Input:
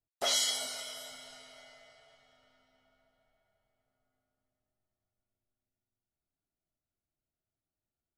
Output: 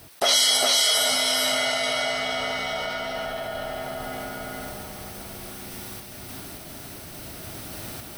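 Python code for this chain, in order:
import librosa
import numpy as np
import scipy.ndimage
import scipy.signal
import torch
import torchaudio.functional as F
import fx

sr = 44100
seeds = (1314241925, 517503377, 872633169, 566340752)

p1 = fx.highpass(x, sr, hz=87.0, slope=6)
p2 = fx.notch(p1, sr, hz=7000.0, q=5.3)
p3 = fx.rider(p2, sr, range_db=10, speed_s=0.5)
p4 = p2 + F.gain(torch.from_numpy(p3), -1.0).numpy()
p5 = fx.tremolo_random(p4, sr, seeds[0], hz=3.5, depth_pct=55)
p6 = p5 + fx.echo_single(p5, sr, ms=405, db=-4.5, dry=0)
p7 = fx.env_flatten(p6, sr, amount_pct=70)
y = F.gain(torch.from_numpy(p7), 6.0).numpy()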